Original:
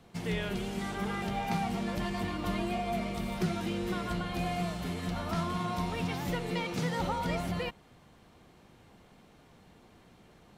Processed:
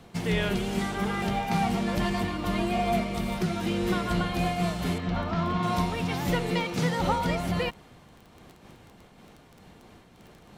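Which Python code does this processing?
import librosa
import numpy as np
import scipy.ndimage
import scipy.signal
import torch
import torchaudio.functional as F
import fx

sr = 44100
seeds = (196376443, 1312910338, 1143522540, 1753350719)

y = fx.air_absorb(x, sr, metres=160.0, at=(4.98, 5.63))
y = fx.dmg_crackle(y, sr, seeds[0], per_s=11.0, level_db=-42.0)
y = fx.am_noise(y, sr, seeds[1], hz=5.7, depth_pct=55)
y = y * 10.0 ** (9.0 / 20.0)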